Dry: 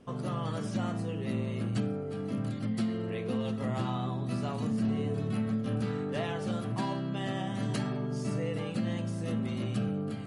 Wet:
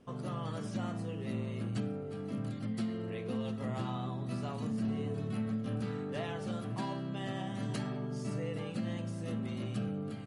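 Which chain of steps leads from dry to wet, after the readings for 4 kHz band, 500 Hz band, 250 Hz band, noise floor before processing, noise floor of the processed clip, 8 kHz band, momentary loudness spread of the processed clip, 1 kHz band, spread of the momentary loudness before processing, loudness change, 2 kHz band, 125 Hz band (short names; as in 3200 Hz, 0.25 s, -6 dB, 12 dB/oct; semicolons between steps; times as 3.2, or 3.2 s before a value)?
-4.5 dB, -4.5 dB, -4.5 dB, -36 dBFS, -41 dBFS, -4.5 dB, 3 LU, -4.5 dB, 3 LU, -4.5 dB, -4.5 dB, -4.5 dB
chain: echo 0.571 s -21 dB; gain -4.5 dB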